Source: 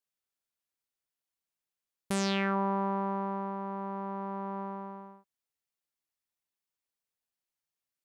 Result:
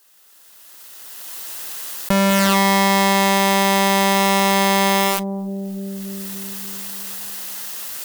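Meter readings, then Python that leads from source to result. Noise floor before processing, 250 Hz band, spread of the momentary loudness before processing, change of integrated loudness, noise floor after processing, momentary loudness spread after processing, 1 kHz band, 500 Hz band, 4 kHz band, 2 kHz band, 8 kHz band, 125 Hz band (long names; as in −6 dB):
below −85 dBFS, +15.5 dB, 13 LU, +15.0 dB, −49 dBFS, 14 LU, +17.0 dB, +16.5 dB, +23.0 dB, +21.5 dB, +25.0 dB, can't be measured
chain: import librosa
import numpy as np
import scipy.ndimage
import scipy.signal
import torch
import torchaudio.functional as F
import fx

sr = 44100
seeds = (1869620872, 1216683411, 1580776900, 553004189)

y = fx.halfwave_hold(x, sr)
y = fx.recorder_agc(y, sr, target_db=-25.5, rise_db_per_s=17.0, max_gain_db=30)
y = fx.high_shelf(y, sr, hz=4200.0, db=-10.5)
y = fx.notch(y, sr, hz=2300.0, q=9.4)
y = fx.leveller(y, sr, passes=5)
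y = fx.riaa(y, sr, side='recording')
y = fx.tube_stage(y, sr, drive_db=9.0, bias=0.4)
y = fx.echo_bbd(y, sr, ms=291, stages=1024, feedback_pct=53, wet_db=-20.5)
y = fx.env_flatten(y, sr, amount_pct=70)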